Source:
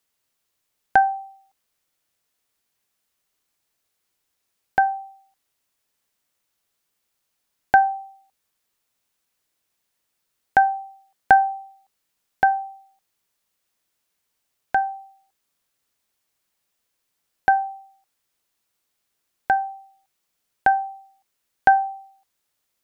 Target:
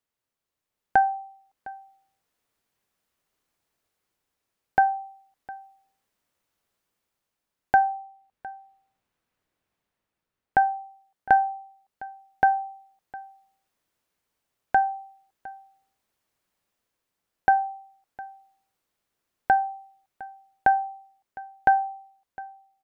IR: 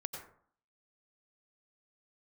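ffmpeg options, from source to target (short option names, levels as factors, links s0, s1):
-filter_complex "[0:a]asettb=1/sr,asplit=3[s0][s1][s2];[s0]atrim=end=7.774[s3];[s1]atrim=start=7.77:end=10.62,asetpts=PTS-STARTPTS,afade=t=in:d=0.004:c=qsin,afade=t=out:st=2.846:d=0.004:c=qsin,bass=f=250:g=3,treble=f=4000:g=-7[s4];[s2]atrim=start=10.616[s5];[s3][s4]acrossfade=d=0.004:c1=hsin:c2=qsin[s6];[s6][s5]acrossfade=d=0.004:c1=qsin:c2=hsin,dynaudnorm=f=130:g=11:m=2.51,highshelf=f=2200:g=-9,aecho=1:1:708:0.1,volume=0.562"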